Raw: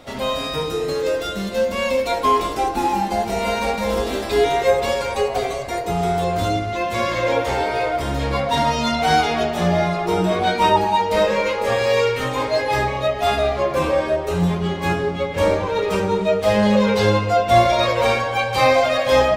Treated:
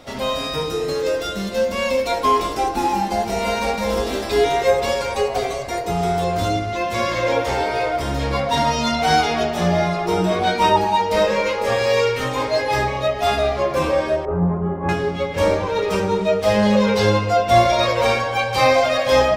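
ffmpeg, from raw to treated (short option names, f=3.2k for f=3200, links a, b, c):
-filter_complex "[0:a]asettb=1/sr,asplit=3[a][b][c];[a]atrim=end=14.254[d];[b]atrim=start=14.25:end=14.89,asetpts=PTS-STARTPTS,afade=t=in:d=0.004:c=qsin,afade=t=out:st=0.636:d=0.004:c=qsin,lowpass=f=1.3k:w=0.5412,lowpass=f=1.3k:w=1.3066[e];[c]atrim=start=14.886[f];[d][e]acrossfade=d=0.004:c1=hsin:c2=qsin[g];[g][f]acrossfade=d=0.004:c1=qsin:c2=hsin,equalizer=f=5.4k:w=3.9:g=4.5"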